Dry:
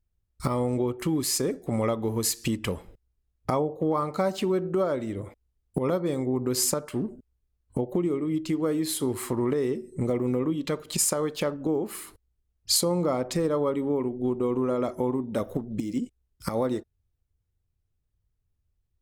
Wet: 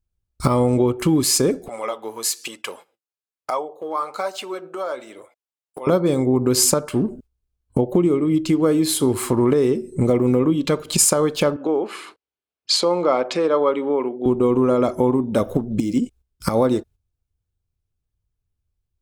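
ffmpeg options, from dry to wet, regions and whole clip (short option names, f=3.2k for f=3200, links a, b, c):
-filter_complex "[0:a]asettb=1/sr,asplit=3[a][b][c];[a]atrim=end=1.684[d];[b]atrim=start=1.68:end=5.87,asetpts=PTS-STARTPTS,afade=t=in:d=0.004:c=qsin,afade=t=out:st=4.186:d=0.004:c=qsin,highpass=690,flanger=delay=1.4:depth=8.1:regen=54:speed=1.1:shape=sinusoidal[e];[c]atrim=start=5.866[f];[d][e]acrossfade=d=0.004:c1=hsin:c2=qsin[g];[g][f]acrossfade=d=0.004:c1=qsin:c2=hsin,asettb=1/sr,asplit=3[h][i][j];[h]atrim=end=11.564[k];[i]atrim=start=11.56:end=14.26,asetpts=PTS-STARTPTS,afade=t=in:d=0.004:c=qsin,afade=t=out:st=2.696:d=0.004:c=qsin,highpass=390,lowpass=2.8k,highshelf=f=2.2k:g=8.5[l];[j]atrim=start=14.256[m];[k][l]acrossfade=d=0.004:c1=hsin:c2=qsin[n];[n][m]acrossfade=d=0.004:c1=qsin:c2=hsin,agate=range=-10dB:threshold=-51dB:ratio=16:detection=peak,equalizer=f=13k:t=o:w=0.3:g=-4,bandreject=f=1.9k:w=9,volume=9dB"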